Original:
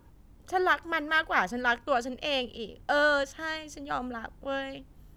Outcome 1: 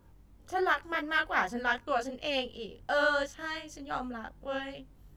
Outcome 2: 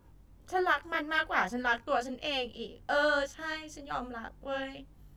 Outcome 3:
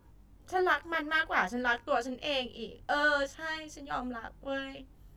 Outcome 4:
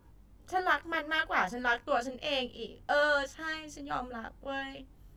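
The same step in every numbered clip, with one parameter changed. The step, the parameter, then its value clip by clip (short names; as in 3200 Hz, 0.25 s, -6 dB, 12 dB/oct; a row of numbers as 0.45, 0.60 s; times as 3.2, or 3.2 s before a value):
chorus, rate: 2.7, 1.8, 0.52, 0.32 Hz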